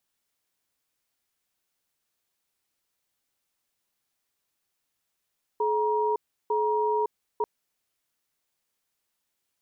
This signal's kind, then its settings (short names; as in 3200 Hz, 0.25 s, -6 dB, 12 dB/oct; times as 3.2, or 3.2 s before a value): cadence 427 Hz, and 948 Hz, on 0.56 s, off 0.34 s, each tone -25 dBFS 1.84 s